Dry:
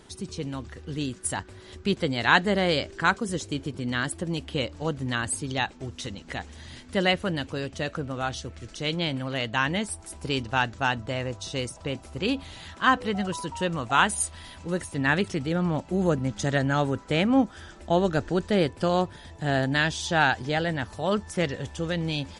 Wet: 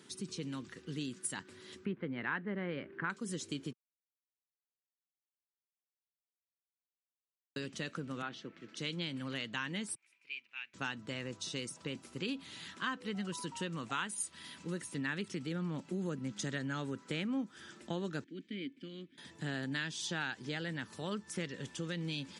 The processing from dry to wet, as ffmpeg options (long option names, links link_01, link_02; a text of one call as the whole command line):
ffmpeg -i in.wav -filter_complex "[0:a]asettb=1/sr,asplit=3[link_01][link_02][link_03];[link_01]atrim=end=1.854[link_04];[link_02]atrim=start=1.85:end=3.1,asetpts=PTS-STARTPTS,afade=type=in:duration=0.004:curve=qsin,afade=type=out:start_time=1.246:duration=0.004:curve=qsin,lowpass=frequency=2100:width=0.5412,lowpass=frequency=2100:width=1.3066[link_05];[link_03]atrim=start=3.096[link_06];[link_04][link_05]acrossfade=duration=0.004:curve1=hsin:curve2=qsin[link_07];[link_07][link_06]acrossfade=duration=0.004:curve1=qsin:curve2=hsin,asettb=1/sr,asplit=3[link_08][link_09][link_10];[link_08]atrim=end=8.224[link_11];[link_09]atrim=start=8.22:end=8.77,asetpts=PTS-STARTPTS,afade=type=in:duration=0.004:curve=qsin,afade=type=out:start_time=0.546:duration=0.004:curve=qsin,highpass=180,lowpass=2600[link_12];[link_10]atrim=start=8.766[link_13];[link_11][link_12]acrossfade=duration=0.004:curve1=hsin:curve2=qsin[link_14];[link_14][link_13]acrossfade=duration=0.004:curve1=qsin:curve2=hsin,asettb=1/sr,asplit=3[link_15][link_16][link_17];[link_15]atrim=end=9.954[link_18];[link_16]atrim=start=9.95:end=10.74,asetpts=PTS-STARTPTS,afade=type=in:duration=0.004:curve=qsin,afade=type=out:start_time=0.786:duration=0.004:curve=qsin,bandpass=frequency=2400:width_type=q:width=10[link_19];[link_17]atrim=start=10.736[link_20];[link_18][link_19]acrossfade=duration=0.004:curve1=hsin:curve2=qsin[link_21];[link_21][link_20]acrossfade=duration=0.004:curve1=qsin:curve2=hsin,asettb=1/sr,asplit=3[link_22][link_23][link_24];[link_22]atrim=end=18.244[link_25];[link_23]atrim=start=18.24:end=19.18,asetpts=PTS-STARTPTS,afade=type=in:duration=0.004:curve=qsin,afade=type=out:start_time=0.936:duration=0.004:curve=qsin,asplit=3[link_26][link_27][link_28];[link_26]bandpass=frequency=270:width_type=q:width=8,volume=0dB[link_29];[link_27]bandpass=frequency=2290:width_type=q:width=8,volume=-6dB[link_30];[link_28]bandpass=frequency=3010:width_type=q:width=8,volume=-9dB[link_31];[link_29][link_30][link_31]amix=inputs=3:normalize=0[link_32];[link_24]atrim=start=19.176[link_33];[link_25][link_32]acrossfade=duration=0.004:curve1=hsin:curve2=qsin[link_34];[link_34][link_33]acrossfade=duration=0.004:curve1=qsin:curve2=hsin,asplit=3[link_35][link_36][link_37];[link_35]atrim=end=3.73,asetpts=PTS-STARTPTS,afade=type=out:start_time=3.726:duration=0.004:curve=hsin[link_38];[link_36]atrim=start=3.73:end=7.56,asetpts=PTS-STARTPTS,volume=0[link_39];[link_37]atrim=start=7.56,asetpts=PTS-STARTPTS,afade=type=in:duration=0.004:curve=hsin[link_40];[link_38][link_39][link_40]concat=n=3:v=0:a=1,highpass=frequency=150:width=0.5412,highpass=frequency=150:width=1.3066,equalizer=frequency=700:width=1.6:gain=-13,acompressor=threshold=-33dB:ratio=3,volume=-3.5dB" out.wav